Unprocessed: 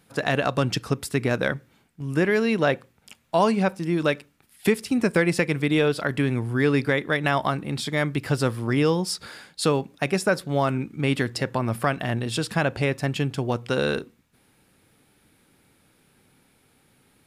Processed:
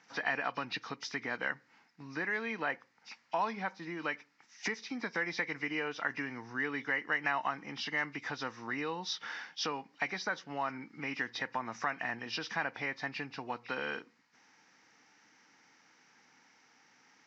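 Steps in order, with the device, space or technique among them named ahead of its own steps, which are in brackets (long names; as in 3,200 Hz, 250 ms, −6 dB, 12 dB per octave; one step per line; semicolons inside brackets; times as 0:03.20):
hearing aid with frequency lowering (hearing-aid frequency compression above 2,000 Hz 1.5 to 1; downward compressor 2 to 1, threshold −35 dBFS, peak gain reduction 11 dB; loudspeaker in its box 380–5,600 Hz, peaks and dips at 390 Hz −10 dB, 580 Hz −10 dB, 900 Hz +4 dB, 1,900 Hz +6 dB, 3,300 Hz −6 dB, 5,000 Hz +4 dB)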